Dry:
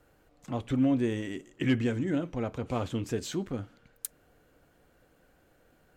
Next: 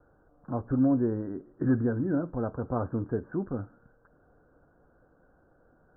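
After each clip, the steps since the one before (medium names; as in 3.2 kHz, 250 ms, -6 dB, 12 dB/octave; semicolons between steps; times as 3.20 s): steep low-pass 1.6 kHz 96 dB/octave; trim +1.5 dB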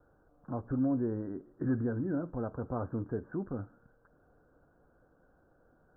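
in parallel at -3 dB: peak limiter -26 dBFS, peak gain reduction 10 dB; on the sum: endings held to a fixed fall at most 440 dB/s; trim -8 dB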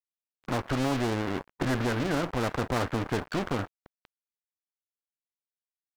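single-diode clipper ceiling -30 dBFS; crossover distortion -51 dBFS; spectrum-flattening compressor 2:1; trim +8.5 dB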